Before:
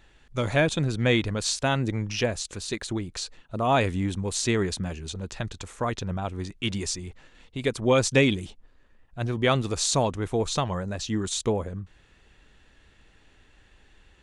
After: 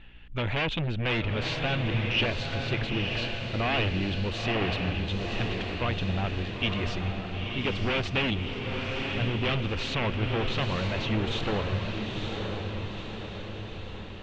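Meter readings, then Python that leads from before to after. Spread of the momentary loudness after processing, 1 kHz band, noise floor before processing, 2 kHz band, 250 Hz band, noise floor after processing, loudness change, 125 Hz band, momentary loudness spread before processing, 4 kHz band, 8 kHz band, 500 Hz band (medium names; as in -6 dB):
8 LU, -3.0 dB, -59 dBFS, +1.0 dB, -2.5 dB, -39 dBFS, -2.5 dB, 0.0 dB, 12 LU, +1.0 dB, -20.0 dB, -5.0 dB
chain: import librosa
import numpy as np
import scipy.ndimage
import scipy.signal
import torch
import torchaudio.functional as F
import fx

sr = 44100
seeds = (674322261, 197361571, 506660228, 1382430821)

p1 = fx.low_shelf(x, sr, hz=63.0, db=11.0)
p2 = fx.add_hum(p1, sr, base_hz=60, snr_db=30)
p3 = fx.fold_sine(p2, sr, drive_db=15, ceiling_db=-7.5)
p4 = p2 + (p3 * 10.0 ** (-8.0 / 20.0))
p5 = fx.ladder_lowpass(p4, sr, hz=3200.0, resonance_pct=60)
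p6 = p5 + fx.echo_diffused(p5, sr, ms=952, feedback_pct=57, wet_db=-3.5, dry=0)
y = p6 * 10.0 ** (-3.0 / 20.0)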